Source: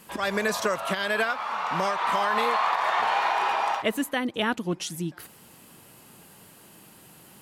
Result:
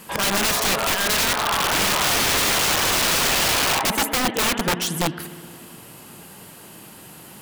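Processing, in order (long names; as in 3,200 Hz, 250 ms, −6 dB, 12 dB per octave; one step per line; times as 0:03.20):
spring reverb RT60 2.6 s, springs 57 ms, chirp 40 ms, DRR 12.5 dB
wrap-around overflow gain 23.5 dB
level +8.5 dB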